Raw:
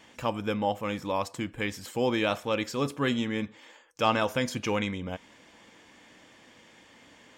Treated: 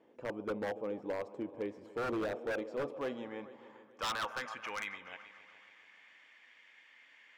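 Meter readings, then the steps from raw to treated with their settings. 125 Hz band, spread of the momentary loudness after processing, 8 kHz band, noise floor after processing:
-17.0 dB, 22 LU, -10.5 dB, -62 dBFS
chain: band-pass sweep 420 Hz -> 2.1 kHz, 2.27–5.16 s; multi-head delay 143 ms, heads all three, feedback 47%, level -21 dB; wavefolder -29.5 dBFS

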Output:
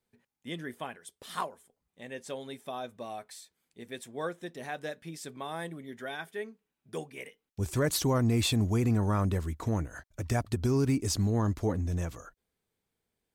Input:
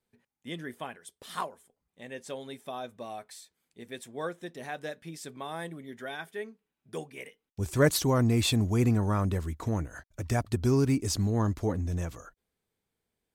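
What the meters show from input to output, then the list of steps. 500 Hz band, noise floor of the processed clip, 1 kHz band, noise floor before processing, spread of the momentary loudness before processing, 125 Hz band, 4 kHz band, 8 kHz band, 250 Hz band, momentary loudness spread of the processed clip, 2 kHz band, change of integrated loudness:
-2.0 dB, under -85 dBFS, -1.0 dB, under -85 dBFS, 19 LU, -1.0 dB, -1.0 dB, -1.0 dB, -1.5 dB, 17 LU, -2.0 dB, -2.0 dB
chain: peak limiter -19 dBFS, peak gain reduction 7 dB

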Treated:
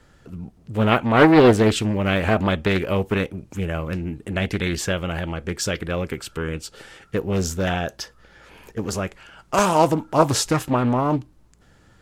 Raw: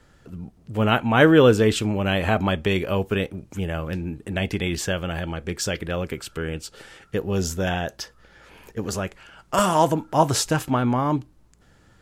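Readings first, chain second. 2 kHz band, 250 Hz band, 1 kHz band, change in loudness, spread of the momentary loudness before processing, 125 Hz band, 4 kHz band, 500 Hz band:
+1.0 dB, +2.0 dB, +1.5 dB, +1.5 dB, 15 LU, +1.0 dB, 0.0 dB, +1.5 dB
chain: loudspeaker Doppler distortion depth 0.51 ms; trim +1.5 dB

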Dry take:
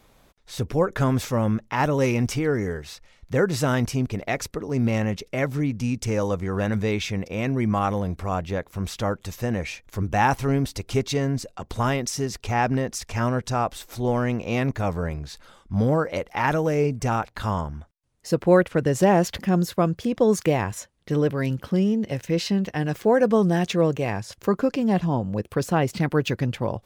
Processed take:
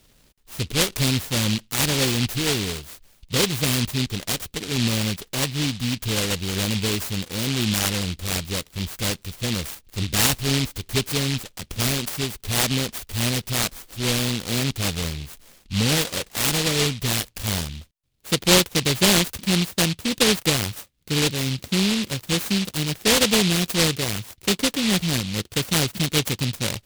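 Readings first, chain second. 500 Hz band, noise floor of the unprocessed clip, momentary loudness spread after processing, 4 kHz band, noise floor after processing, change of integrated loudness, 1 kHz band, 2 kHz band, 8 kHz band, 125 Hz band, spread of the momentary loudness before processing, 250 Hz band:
-5.0 dB, -58 dBFS, 9 LU, +15.0 dB, -58 dBFS, +2.0 dB, -5.5 dB, +4.0 dB, +12.5 dB, -0.5 dB, 8 LU, -1.0 dB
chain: delay time shaken by noise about 3.3 kHz, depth 0.37 ms

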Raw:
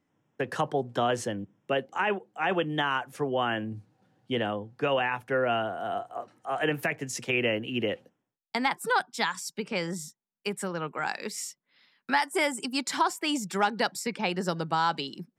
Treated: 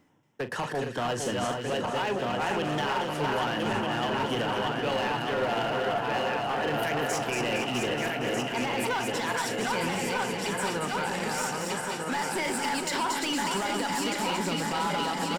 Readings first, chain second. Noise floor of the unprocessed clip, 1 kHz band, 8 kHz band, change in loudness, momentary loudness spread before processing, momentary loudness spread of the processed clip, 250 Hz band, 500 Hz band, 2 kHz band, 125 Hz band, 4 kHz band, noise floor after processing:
-85 dBFS, +1.5 dB, +3.5 dB, +1.0 dB, 9 LU, 2 LU, +1.5 dB, +1.0 dB, +0.5 dB, +2.5 dB, +2.5 dB, -34 dBFS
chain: backward echo that repeats 622 ms, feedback 73%, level -5 dB; peak limiter -21 dBFS, peak gain reduction 10.5 dB; reverse; upward compressor, threshold -34 dBFS; reverse; small resonant body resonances 910/2900 Hz, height 7 dB; hard clipper -27.5 dBFS, distortion -12 dB; doubling 41 ms -13 dB; two-band feedback delay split 1.8 kHz, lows 460 ms, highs 231 ms, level -5 dB; trim +1.5 dB

